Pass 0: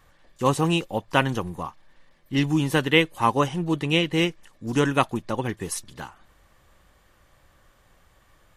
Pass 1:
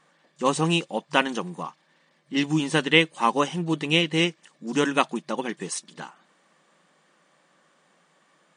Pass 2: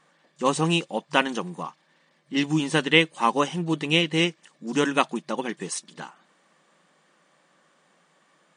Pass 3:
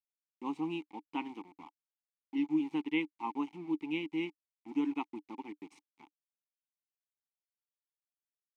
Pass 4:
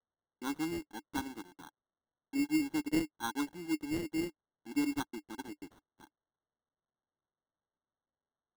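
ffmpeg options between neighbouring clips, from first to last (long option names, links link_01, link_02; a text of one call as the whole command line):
ffmpeg -i in.wav -af "afftfilt=real='re*between(b*sr/4096,140,9700)':imag='im*between(b*sr/4096,140,9700)':win_size=4096:overlap=0.75,adynamicequalizer=threshold=0.0158:dfrequency=2000:dqfactor=0.7:tfrequency=2000:tqfactor=0.7:attack=5:release=100:ratio=0.375:range=2:mode=boostabove:tftype=highshelf,volume=-1dB" out.wav
ffmpeg -i in.wav -af anull out.wav
ffmpeg -i in.wav -filter_complex "[0:a]aeval=exprs='val(0)*gte(abs(val(0)),0.0316)':channel_layout=same,asplit=3[link_01][link_02][link_03];[link_01]bandpass=frequency=300:width_type=q:width=8,volume=0dB[link_04];[link_02]bandpass=frequency=870:width_type=q:width=8,volume=-6dB[link_05];[link_03]bandpass=frequency=2240:width_type=q:width=8,volume=-9dB[link_06];[link_04][link_05][link_06]amix=inputs=3:normalize=0,volume=-3.5dB" out.wav
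ffmpeg -i in.wav -af "acrusher=samples=18:mix=1:aa=0.000001" out.wav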